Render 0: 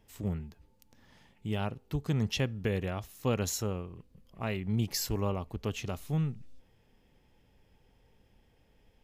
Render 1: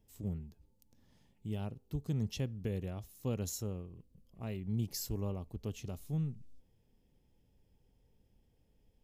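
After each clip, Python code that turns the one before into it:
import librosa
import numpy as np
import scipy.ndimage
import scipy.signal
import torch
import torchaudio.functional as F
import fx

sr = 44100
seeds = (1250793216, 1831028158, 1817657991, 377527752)

y = fx.peak_eq(x, sr, hz=1600.0, db=-12.0, octaves=2.7)
y = F.gain(torch.from_numpy(y), -4.0).numpy()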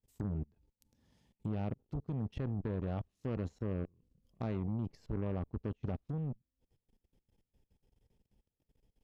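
y = fx.level_steps(x, sr, step_db=23)
y = fx.env_lowpass_down(y, sr, base_hz=1600.0, full_db=-47.0)
y = fx.cheby_harmonics(y, sr, harmonics=(7,), levels_db=(-20,), full_scale_db=-36.5)
y = F.gain(torch.from_numpy(y), 10.5).numpy()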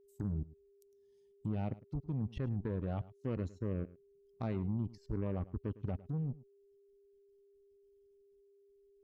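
y = fx.bin_expand(x, sr, power=1.5)
y = y + 10.0 ** (-65.0 / 20.0) * np.sin(2.0 * np.pi * 400.0 * np.arange(len(y)) / sr)
y = y + 10.0 ** (-19.0 / 20.0) * np.pad(y, (int(106 * sr / 1000.0), 0))[:len(y)]
y = F.gain(torch.from_numpy(y), 2.0).numpy()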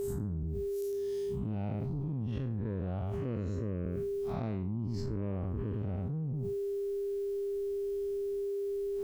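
y = fx.spec_blur(x, sr, span_ms=134.0)
y = fx.env_flatten(y, sr, amount_pct=100)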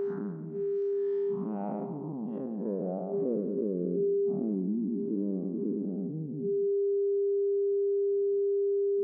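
y = fx.filter_sweep_lowpass(x, sr, from_hz=1500.0, to_hz=330.0, start_s=0.81, end_s=4.18, q=2.1)
y = fx.brickwall_bandpass(y, sr, low_hz=160.0, high_hz=6500.0)
y = y + 10.0 ** (-13.0 / 20.0) * np.pad(y, (int(178 * sr / 1000.0), 0))[:len(y)]
y = F.gain(torch.from_numpy(y), 3.5).numpy()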